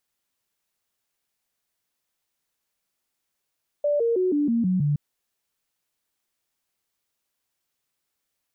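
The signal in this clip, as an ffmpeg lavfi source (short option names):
-f lavfi -i "aevalsrc='0.112*clip(min(mod(t,0.16),0.16-mod(t,0.16))/0.005,0,1)*sin(2*PI*585*pow(2,-floor(t/0.16)/3)*mod(t,0.16))':d=1.12:s=44100"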